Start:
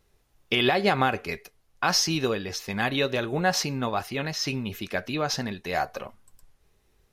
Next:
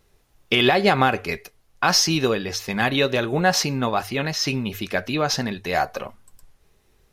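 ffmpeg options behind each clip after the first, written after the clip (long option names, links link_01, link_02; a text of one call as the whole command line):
ffmpeg -i in.wav -af "bandreject=frequency=50:width_type=h:width=6,bandreject=frequency=100:width_type=h:width=6,acontrast=31" out.wav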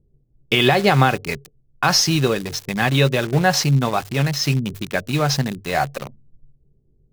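ffmpeg -i in.wav -filter_complex "[0:a]acrossover=split=420[link_01][link_02];[link_01]equalizer=frequency=140:width=7.1:gain=14[link_03];[link_02]aeval=exprs='val(0)*gte(abs(val(0)),0.0335)':channel_layout=same[link_04];[link_03][link_04]amix=inputs=2:normalize=0,volume=1.5dB" out.wav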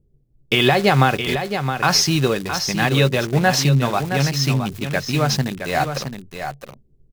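ffmpeg -i in.wav -af "aecho=1:1:667:0.398" out.wav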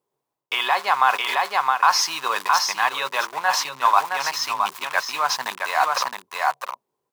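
ffmpeg -i in.wav -af "areverse,acompressor=threshold=-24dB:ratio=6,areverse,highpass=frequency=1000:width_type=q:width=6.8,volume=5dB" out.wav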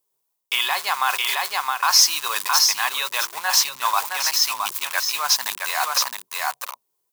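ffmpeg -i in.wav -af "crystalizer=i=7.5:c=0,volume=-8.5dB" out.wav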